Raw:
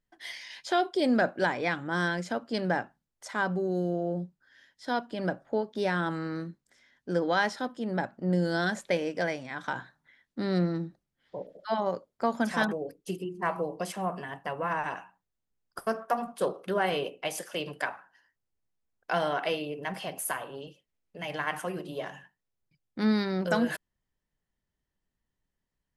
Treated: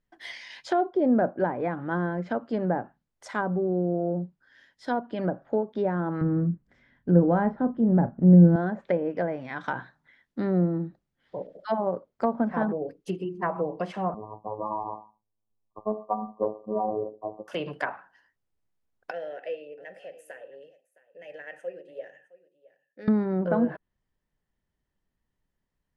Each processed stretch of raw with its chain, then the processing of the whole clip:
6.21–8.56 s: tone controls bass +14 dB, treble -14 dB + doubling 35 ms -11 dB
14.14–17.48 s: robot voice 107 Hz + brick-wall FIR low-pass 1.2 kHz
19.11–23.08 s: vowel filter e + resonant high shelf 5.4 kHz +11 dB, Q 1.5 + delay 664 ms -20 dB
whole clip: low-pass that closes with the level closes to 890 Hz, closed at -25 dBFS; treble shelf 3.7 kHz -9 dB; trim +3.5 dB

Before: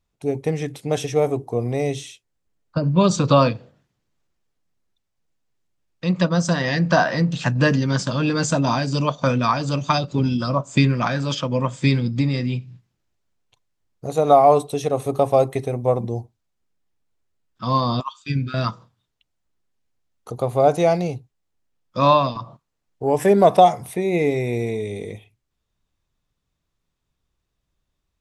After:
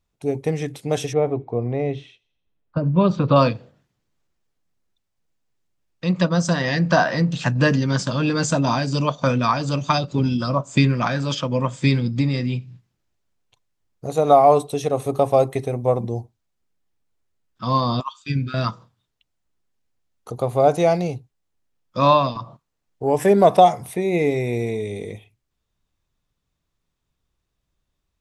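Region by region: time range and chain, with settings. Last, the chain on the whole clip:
1.13–3.36 s: distance through air 370 m + feedback echo behind a high-pass 85 ms, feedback 53%, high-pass 2.6 kHz, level -23 dB
whole clip: none

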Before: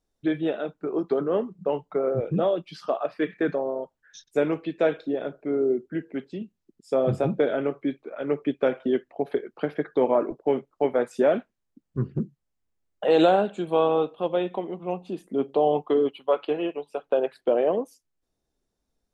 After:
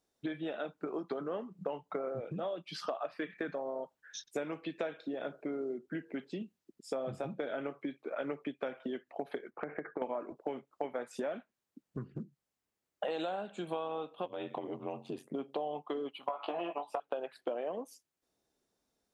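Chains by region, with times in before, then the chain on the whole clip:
9.50–10.02 s: elliptic low-pass 2.2 kHz + compression, threshold -31 dBFS
14.25–15.35 s: compression 2.5:1, threshold -30 dBFS + ring modulator 46 Hz + tape noise reduction on one side only decoder only
16.21–17.00 s: high-order bell 860 Hz +14 dB 1.2 oct + compression 12:1, threshold -21 dBFS + doubling 17 ms -4 dB
whole clip: dynamic bell 410 Hz, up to -6 dB, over -36 dBFS, Q 1.7; compression 12:1, threshold -34 dBFS; high-pass 270 Hz 6 dB/octave; trim +2 dB

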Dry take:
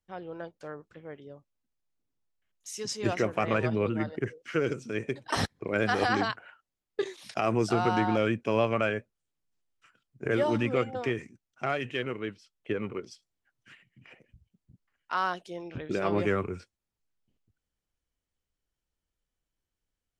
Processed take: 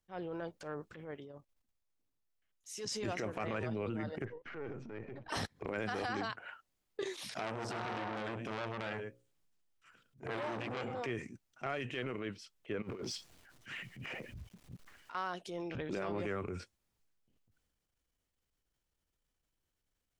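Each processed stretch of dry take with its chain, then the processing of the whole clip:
1.11–2.91 s: peaking EQ 180 Hz -2.5 dB 1.2 oct + level held to a coarse grid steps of 9 dB
4.25–5.29 s: partial rectifier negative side -7 dB + low-pass 1.8 kHz + compression 2.5:1, threshold -44 dBFS
7.29–11.04 s: hum notches 60/120/180/240/300/360/420/480/540 Hz + delay 106 ms -16 dB + transformer saturation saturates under 2.3 kHz
12.82–15.15 s: companding laws mixed up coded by mu + treble shelf 9.1 kHz -7 dB + compressor with a negative ratio -40 dBFS, ratio -0.5
whole clip: transient shaper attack -9 dB, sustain +5 dB; compression 4:1, threshold -37 dBFS; trim +1 dB

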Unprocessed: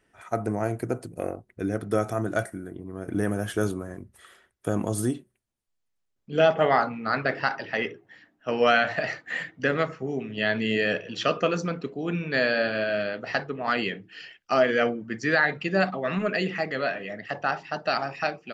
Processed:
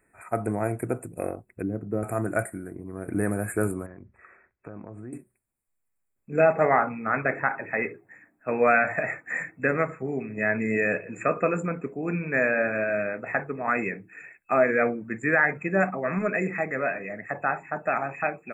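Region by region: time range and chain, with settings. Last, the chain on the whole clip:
1.62–2.03 s: sorted samples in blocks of 8 samples + band-pass filter 170 Hz, Q 0.58
3.86–5.13 s: low-pass 3.7 kHz 24 dB/octave + compression 3:1, threshold -41 dBFS
whole clip: treble shelf 4.2 kHz +6 dB; FFT band-reject 2.6–7 kHz

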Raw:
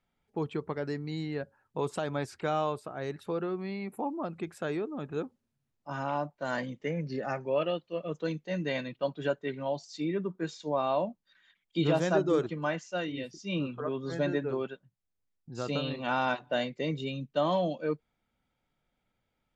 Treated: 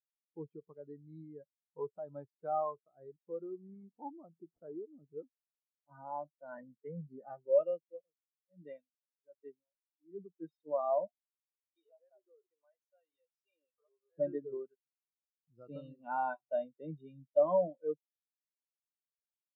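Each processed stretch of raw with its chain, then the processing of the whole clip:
3.44–5.14 s: median filter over 9 samples + resonant high shelf 5 kHz +14 dB, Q 3 + decimation joined by straight lines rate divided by 6×
7.91–10.38 s: bass shelf 90 Hz -9.5 dB + logarithmic tremolo 1.3 Hz, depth 32 dB
11.07–14.18 s: high-pass 470 Hz 24 dB/octave + compression 2.5:1, threshold -44 dBFS
whole clip: dynamic bell 980 Hz, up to +4 dB, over -40 dBFS, Q 1.2; spectral contrast expander 2.5:1; trim -3 dB

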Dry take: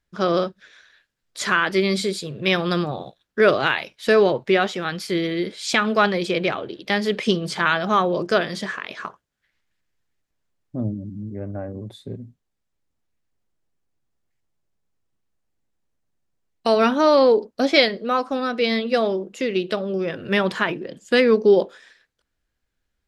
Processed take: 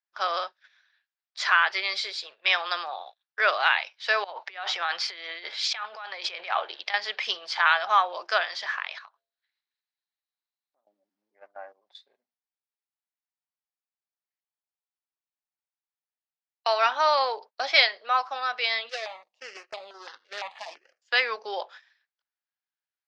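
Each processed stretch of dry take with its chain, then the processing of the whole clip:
4.24–6.94 s: compressor with a negative ratio -29 dBFS + dynamic bell 820 Hz, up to +3 dB, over -36 dBFS, Q 0.94
8.98–10.87 s: peaking EQ 4 kHz +14.5 dB 0.23 oct + de-hum 85.11 Hz, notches 8 + compression 12:1, threshold -42 dBFS
18.89–21.02 s: median filter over 41 samples + treble shelf 4.6 kHz +12 dB + stepped phaser 5.9 Hz 250–5900 Hz
whole clip: elliptic band-pass 770–5300 Hz, stop band 80 dB; gate -46 dBFS, range -13 dB

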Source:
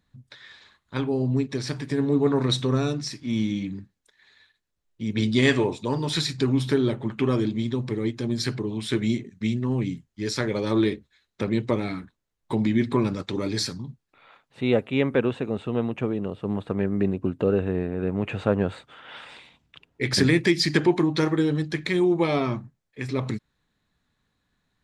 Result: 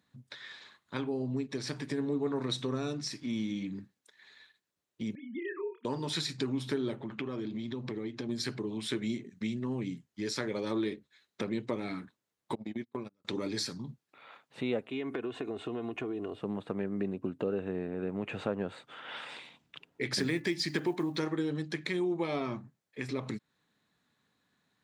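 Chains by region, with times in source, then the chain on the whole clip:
5.15–5.85 s: formants replaced by sine waves + two resonant band-passes 820 Hz, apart 1.1 oct + doubling 29 ms -5 dB
7.00–8.29 s: low-pass 5.4 kHz + compression 4:1, threshold -28 dBFS
12.55–13.25 s: gate -21 dBFS, range -45 dB + compression 3:1, threshold -29 dBFS
14.89–16.39 s: comb 2.8 ms, depth 75% + compression 4:1, threshold -27 dBFS
20.19–21.21 s: block-companded coder 7-bit + de-hum 289.6 Hz, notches 7
whole clip: high-pass 160 Hz 12 dB/octave; compression 2:1, threshold -37 dBFS

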